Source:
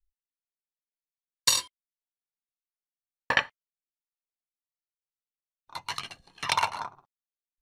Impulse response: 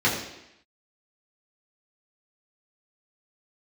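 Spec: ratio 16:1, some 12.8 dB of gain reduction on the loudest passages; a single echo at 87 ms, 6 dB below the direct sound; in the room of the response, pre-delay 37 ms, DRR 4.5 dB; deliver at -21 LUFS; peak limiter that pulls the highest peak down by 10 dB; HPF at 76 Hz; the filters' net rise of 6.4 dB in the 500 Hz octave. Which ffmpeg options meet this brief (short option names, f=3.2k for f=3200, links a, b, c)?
-filter_complex "[0:a]highpass=76,equalizer=f=500:t=o:g=7.5,acompressor=threshold=-31dB:ratio=16,alimiter=limit=-22dB:level=0:latency=1,aecho=1:1:87:0.501,asplit=2[a][b];[1:a]atrim=start_sample=2205,adelay=37[c];[b][c]afir=irnorm=-1:irlink=0,volume=-20.5dB[d];[a][d]amix=inputs=2:normalize=0,volume=18dB"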